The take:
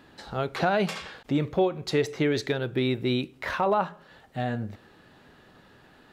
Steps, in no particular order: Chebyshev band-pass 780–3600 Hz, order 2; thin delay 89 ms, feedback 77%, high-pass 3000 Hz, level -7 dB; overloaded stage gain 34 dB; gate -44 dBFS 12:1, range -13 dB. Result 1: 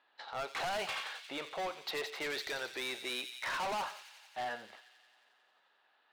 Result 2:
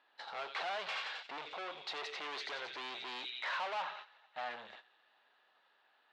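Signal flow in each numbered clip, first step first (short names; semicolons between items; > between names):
gate > Chebyshev band-pass > overloaded stage > thin delay; thin delay > gate > overloaded stage > Chebyshev band-pass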